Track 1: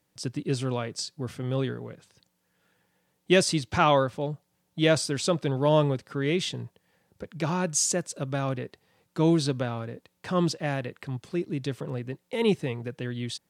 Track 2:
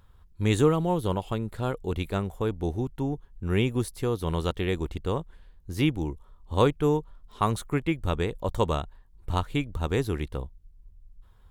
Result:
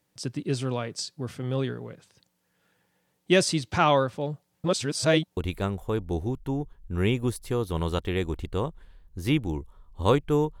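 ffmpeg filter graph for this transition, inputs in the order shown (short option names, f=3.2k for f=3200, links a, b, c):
-filter_complex "[0:a]apad=whole_dur=10.6,atrim=end=10.6,asplit=2[a][b];[a]atrim=end=4.642[c];[b]atrim=start=4.638:end=5.372,asetpts=PTS-STARTPTS,areverse[d];[1:a]atrim=start=1.888:end=7.12[e];[c][d]acrossfade=d=0.004:c1=hsin:c2=hsin[f];[f][e]acrossfade=d=0.004:c1=hsin:c2=hsin"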